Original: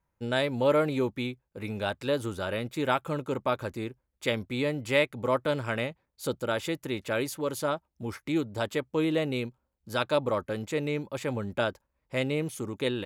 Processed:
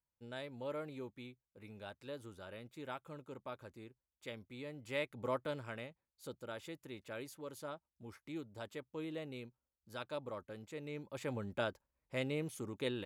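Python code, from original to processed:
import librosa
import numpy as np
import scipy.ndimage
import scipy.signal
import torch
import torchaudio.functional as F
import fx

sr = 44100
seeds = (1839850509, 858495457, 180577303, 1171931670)

y = fx.gain(x, sr, db=fx.line((4.67, -18.5), (5.26, -10.0), (5.87, -16.5), (10.8, -16.5), (11.25, -9.0)))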